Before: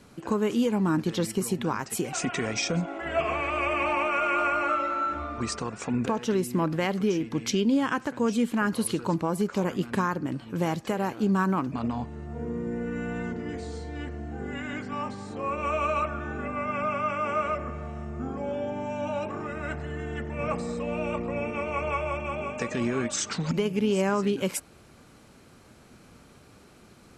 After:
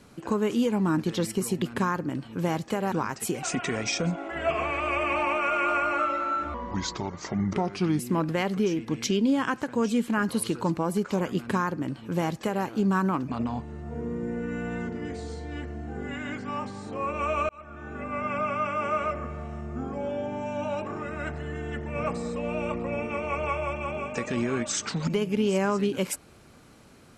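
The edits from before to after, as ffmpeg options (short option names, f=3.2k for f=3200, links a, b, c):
-filter_complex "[0:a]asplit=6[a][b][c][d][e][f];[a]atrim=end=1.622[g];[b]atrim=start=9.788:end=11.092[h];[c]atrim=start=1.618:end=5.244[i];[d]atrim=start=5.24:end=6.43,asetpts=PTS-STARTPTS,asetrate=36162,aresample=44100[j];[e]atrim=start=6.426:end=15.93,asetpts=PTS-STARTPTS,afade=t=out:st=9.5:d=0.004:c=hsin[k];[f]atrim=start=15.93,asetpts=PTS-STARTPTS,afade=t=in:d=0.71[l];[g][h]acrossfade=d=0.004:c1=hsin:c2=hsin[m];[m][i]acrossfade=d=0.004:c1=hsin:c2=hsin[n];[n][j]acrossfade=d=0.004:c1=hsin:c2=hsin[o];[k][l]concat=n=2:v=0:a=1[p];[o][p]acrossfade=d=0.004:c1=hsin:c2=hsin"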